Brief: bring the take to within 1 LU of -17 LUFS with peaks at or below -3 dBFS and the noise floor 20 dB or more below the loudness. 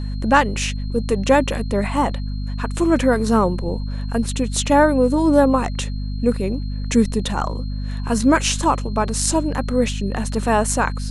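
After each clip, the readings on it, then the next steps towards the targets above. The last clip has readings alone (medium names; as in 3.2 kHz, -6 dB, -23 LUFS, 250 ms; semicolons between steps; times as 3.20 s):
hum 50 Hz; highest harmonic 250 Hz; hum level -23 dBFS; steady tone 4.2 kHz; tone level -44 dBFS; loudness -20.0 LUFS; peak level -1.5 dBFS; loudness target -17.0 LUFS
-> de-hum 50 Hz, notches 5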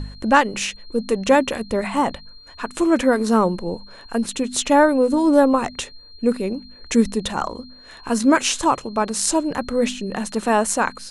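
hum not found; steady tone 4.2 kHz; tone level -44 dBFS
-> band-stop 4.2 kHz, Q 30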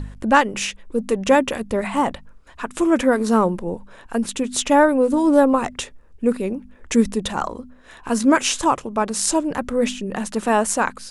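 steady tone not found; loudness -20.0 LUFS; peak level -1.5 dBFS; loudness target -17.0 LUFS
-> trim +3 dB; peak limiter -3 dBFS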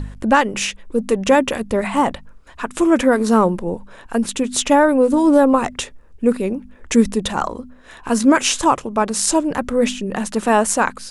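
loudness -17.5 LUFS; peak level -3.0 dBFS; noise floor -44 dBFS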